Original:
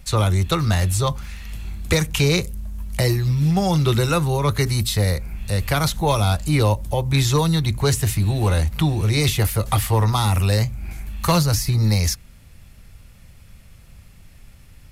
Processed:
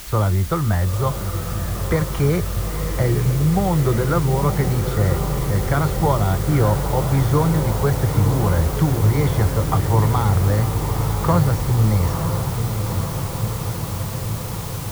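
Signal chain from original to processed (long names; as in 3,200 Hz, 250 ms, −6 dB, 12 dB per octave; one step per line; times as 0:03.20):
Savitzky-Golay smoothing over 41 samples
background noise white −37 dBFS
feedback delay with all-pass diffusion 930 ms, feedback 76%, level −7 dB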